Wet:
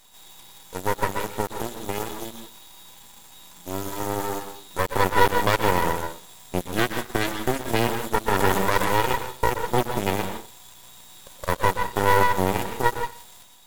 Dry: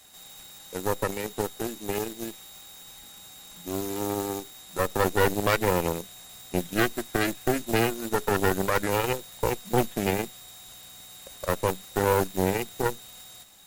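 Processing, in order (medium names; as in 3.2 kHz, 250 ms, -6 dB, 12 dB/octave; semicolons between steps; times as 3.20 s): small resonant body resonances 960/3400 Hz, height 16 dB, ringing for 45 ms; on a send at -4 dB: reverberation RT60 0.40 s, pre-delay 112 ms; on the sum: half-wave rectifier; 8.21–9.01 s: transient shaper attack 0 dB, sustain +8 dB; trim +1.5 dB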